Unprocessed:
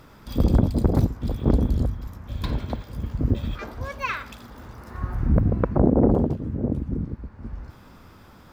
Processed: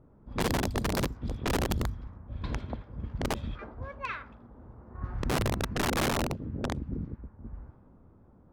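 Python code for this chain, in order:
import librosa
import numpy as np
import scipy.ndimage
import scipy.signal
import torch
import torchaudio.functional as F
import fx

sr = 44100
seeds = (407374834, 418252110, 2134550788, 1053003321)

y = (np.mod(10.0 ** (14.5 / 20.0) * x + 1.0, 2.0) - 1.0) / 10.0 ** (14.5 / 20.0)
y = fx.env_lowpass(y, sr, base_hz=530.0, full_db=-18.5)
y = y * librosa.db_to_amplitude(-7.5)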